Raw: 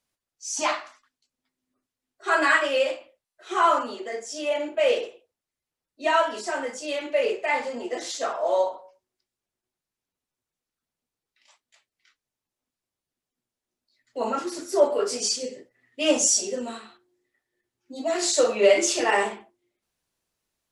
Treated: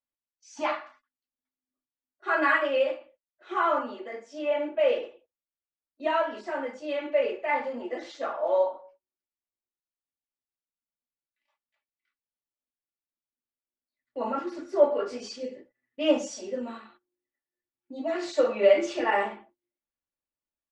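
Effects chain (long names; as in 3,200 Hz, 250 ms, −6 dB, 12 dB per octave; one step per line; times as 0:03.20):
noise gate −53 dBFS, range −13 dB
low-pass filter 2,400 Hz 12 dB per octave
comb filter 3.5 ms, depth 42%
level −3.5 dB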